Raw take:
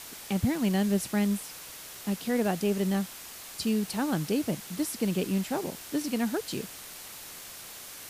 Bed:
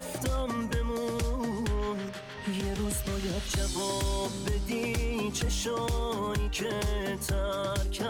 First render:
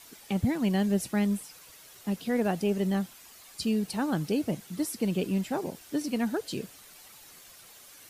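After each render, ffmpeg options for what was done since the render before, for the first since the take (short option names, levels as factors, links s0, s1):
-af "afftdn=nr=10:nf=-44"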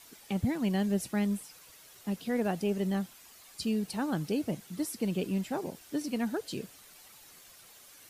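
-af "volume=0.708"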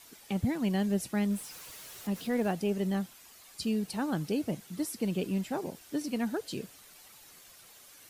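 -filter_complex "[0:a]asettb=1/sr,asplit=3[s0][s1][s2];[s0]atrim=end=1.304[s3];[s1]atrim=start=1.3:end=2.53,asetpts=PTS-STARTPTS,afade=t=in:d=0.004:c=qsin,afade=t=out:st=1.226:d=0.004:c=qsin,aeval=exprs='val(0)+0.5*0.00531*sgn(val(0))':c=same[s4];[s2]atrim=start=2.526[s5];[s3][s4]acrossfade=d=0.004:c1=hsin:c2=qsin[s6];[s6][s5]acrossfade=d=0.004:c1=qsin:c2=hsin"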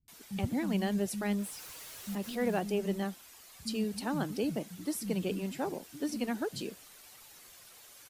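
-filter_complex "[0:a]acrossover=split=190[s0][s1];[s1]adelay=80[s2];[s0][s2]amix=inputs=2:normalize=0"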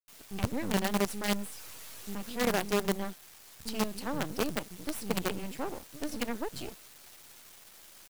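-filter_complex "[0:a]asplit=2[s0][s1];[s1]asoftclip=type=tanh:threshold=0.0188,volume=0.473[s2];[s0][s2]amix=inputs=2:normalize=0,acrusher=bits=5:dc=4:mix=0:aa=0.000001"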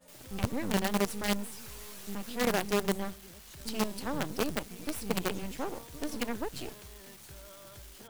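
-filter_complex "[1:a]volume=0.0841[s0];[0:a][s0]amix=inputs=2:normalize=0"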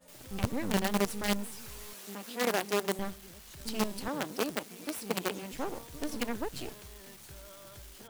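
-filter_complex "[0:a]asettb=1/sr,asplit=3[s0][s1][s2];[s0]atrim=end=1.934[s3];[s1]atrim=start=1.93:end=2.99,asetpts=PTS-STARTPTS,afade=t=in:d=0.004:c=qsin,afade=t=out:st=1.056:d=0.004:c=qsin,highpass=260[s4];[s2]atrim=start=2.986[s5];[s3][s4]acrossfade=d=0.004:c1=hsin:c2=qsin[s6];[s6][s5]acrossfade=d=0.004:c1=qsin:c2=hsin,asettb=1/sr,asplit=3[s7][s8][s9];[s7]atrim=end=4.084[s10];[s8]atrim=start=4.08:end=5.53,asetpts=PTS-STARTPTS,afade=t=in:d=0.004:c=qsin,afade=t=out:st=1.446:d=0.004:c=qsin,highpass=220[s11];[s9]atrim=start=5.526[s12];[s10][s11]acrossfade=d=0.004:c1=hsin:c2=qsin[s13];[s13][s12]acrossfade=d=0.004:c1=qsin:c2=hsin"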